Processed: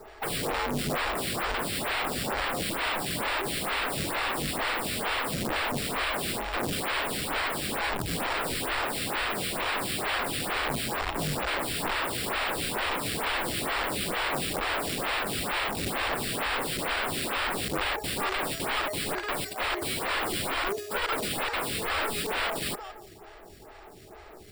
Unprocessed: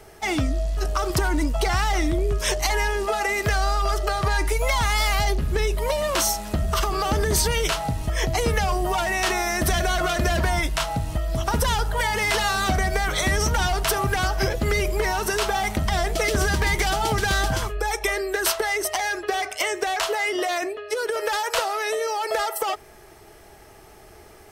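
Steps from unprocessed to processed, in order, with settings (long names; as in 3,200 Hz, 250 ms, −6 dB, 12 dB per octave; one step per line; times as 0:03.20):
feedback echo with a high-pass in the loop 168 ms, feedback 38%, high-pass 410 Hz, level −17 dB
decimation without filtering 7×
wrap-around overflow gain 24.5 dB
phaser with staggered stages 2.2 Hz
level +2.5 dB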